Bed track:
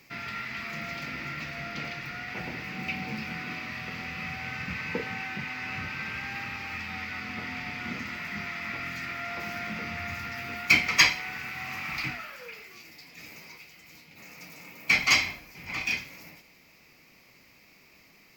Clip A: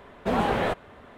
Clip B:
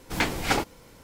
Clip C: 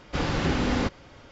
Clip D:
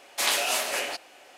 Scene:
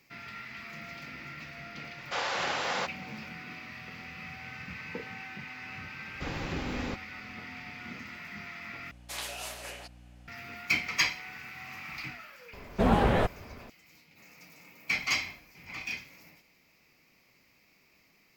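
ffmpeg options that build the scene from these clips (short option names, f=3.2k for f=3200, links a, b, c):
-filter_complex "[3:a]asplit=2[a][b];[0:a]volume=-7.5dB[c];[a]highpass=f=570:w=0.5412,highpass=f=570:w=1.3066[d];[4:a]aeval=exprs='val(0)+0.0126*(sin(2*PI*60*n/s)+sin(2*PI*2*60*n/s)/2+sin(2*PI*3*60*n/s)/3+sin(2*PI*4*60*n/s)/4+sin(2*PI*5*60*n/s)/5)':c=same[e];[1:a]lowshelf=f=150:g=12[f];[c]asplit=2[g][h];[g]atrim=end=8.914[i];[e]atrim=end=1.37,asetpts=PTS-STARTPTS,volume=-13.5dB[j];[h]atrim=start=10.276[k];[d]atrim=end=1.31,asetpts=PTS-STARTPTS,afade=t=in:d=0.004:c=hsin,afade=t=out:st=1.306:d=0.004:c=hsin,adelay=1980[l];[b]atrim=end=1.31,asetpts=PTS-STARTPTS,volume=-10dB,afade=t=in:d=0.004:c=hsin,afade=t=out:st=1.306:d=0.004:c=hsin,adelay=6070[m];[f]atrim=end=1.17,asetpts=PTS-STARTPTS,volume=-2dB,afade=t=in:d=0.004:c=hsin,afade=t=out:st=1.166:d=0.004:c=hsin,adelay=12530[n];[i][j]acrossfade=d=0.004:c1=hsin:c2=hsin[o];[o][k]acrossfade=d=0.004:c1=hsin:c2=hsin[p];[p][l][m][n]amix=inputs=4:normalize=0"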